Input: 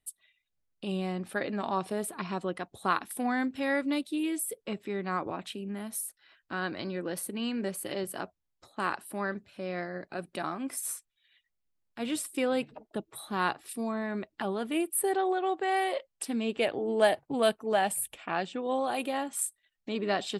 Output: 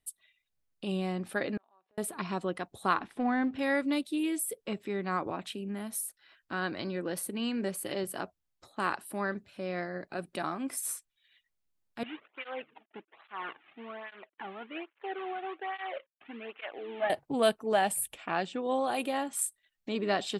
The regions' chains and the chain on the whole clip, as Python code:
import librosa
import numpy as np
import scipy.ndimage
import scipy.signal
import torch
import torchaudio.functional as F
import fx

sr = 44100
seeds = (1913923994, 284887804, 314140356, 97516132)

y = fx.chain(x, sr, fx.bandpass_edges(low_hz=460.0, high_hz=2500.0),
    fx.gate_flip(shuts_db=-35.0, range_db=-35), at=(1.57, 1.98))
y = fx.chain(y, sr, fx.law_mismatch(coded='mu'),
    fx.lowpass(hz=4200.0, slope=12),
    fx.high_shelf(hz=3200.0, db=-11.5), at=(2.94, 3.59))
y = fx.chain(y, sr, fx.cvsd(bps=16000),
    fx.highpass(hz=970.0, slope=6),
    fx.flanger_cancel(hz=1.2, depth_ms=2.2), at=(12.03, 17.1))